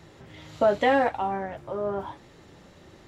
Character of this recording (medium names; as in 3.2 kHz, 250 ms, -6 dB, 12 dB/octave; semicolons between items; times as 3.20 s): noise floor -53 dBFS; spectral tilt -3.5 dB/octave